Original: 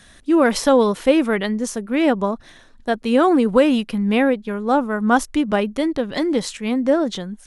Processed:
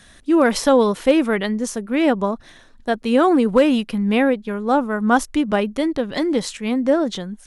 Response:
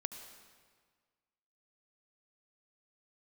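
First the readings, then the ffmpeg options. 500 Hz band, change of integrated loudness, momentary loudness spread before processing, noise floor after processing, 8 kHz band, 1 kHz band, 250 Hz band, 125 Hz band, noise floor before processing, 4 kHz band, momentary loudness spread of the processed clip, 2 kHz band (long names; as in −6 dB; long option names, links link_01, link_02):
0.0 dB, 0.0 dB, 8 LU, −48 dBFS, 0.0 dB, 0.0 dB, 0.0 dB, can't be measured, −48 dBFS, 0.0 dB, 8 LU, 0.0 dB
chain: -af "asoftclip=type=hard:threshold=-5dB"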